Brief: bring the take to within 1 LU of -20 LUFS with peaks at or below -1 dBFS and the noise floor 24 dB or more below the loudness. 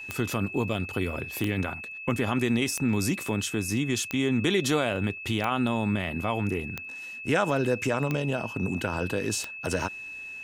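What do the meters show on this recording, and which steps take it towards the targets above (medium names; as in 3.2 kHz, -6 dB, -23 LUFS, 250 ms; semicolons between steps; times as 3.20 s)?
clicks found 8; steady tone 2.6 kHz; tone level -37 dBFS; loudness -28.0 LUFS; peak level -11.0 dBFS; loudness target -20.0 LUFS
-> de-click; band-stop 2.6 kHz, Q 30; trim +8 dB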